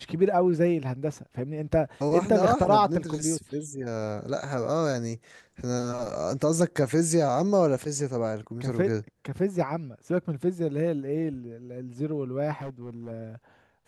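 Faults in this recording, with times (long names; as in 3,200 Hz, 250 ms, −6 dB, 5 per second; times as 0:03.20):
0:12.53–0:13.12: clipping −32.5 dBFS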